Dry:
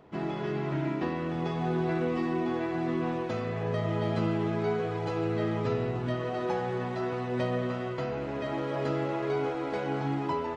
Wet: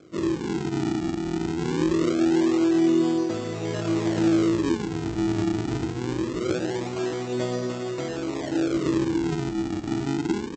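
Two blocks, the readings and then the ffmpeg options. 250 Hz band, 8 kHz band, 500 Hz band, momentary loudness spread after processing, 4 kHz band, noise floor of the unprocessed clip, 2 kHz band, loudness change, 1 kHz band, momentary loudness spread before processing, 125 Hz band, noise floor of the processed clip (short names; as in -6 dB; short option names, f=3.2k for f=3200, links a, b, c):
+9.0 dB, n/a, +3.0 dB, 8 LU, +8.0 dB, -34 dBFS, +2.0 dB, +5.5 dB, -1.5 dB, 4 LU, +1.5 dB, -32 dBFS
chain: -af "aresample=16000,acrusher=samples=17:mix=1:aa=0.000001:lfo=1:lforange=27.2:lforate=0.23,aresample=44100,highpass=62,equalizer=f=330:w=4.8:g=14.5"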